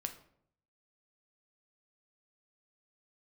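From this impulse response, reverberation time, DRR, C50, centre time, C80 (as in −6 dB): 0.65 s, 6.0 dB, 11.5 dB, 10 ms, 15.5 dB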